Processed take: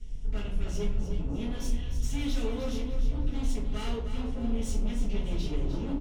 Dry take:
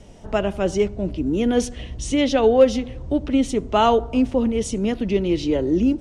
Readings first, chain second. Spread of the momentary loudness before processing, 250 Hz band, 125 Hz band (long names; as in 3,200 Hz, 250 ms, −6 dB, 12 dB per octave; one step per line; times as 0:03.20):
9 LU, −14.5 dB, −3.5 dB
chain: guitar amp tone stack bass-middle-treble 6-0-2
tube saturation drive 44 dB, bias 0.35
low-shelf EQ 84 Hz +8.5 dB
on a send: repeating echo 304 ms, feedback 36%, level −9 dB
on the sum: rectangular room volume 35 cubic metres, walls mixed, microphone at 1.4 metres
level +1.5 dB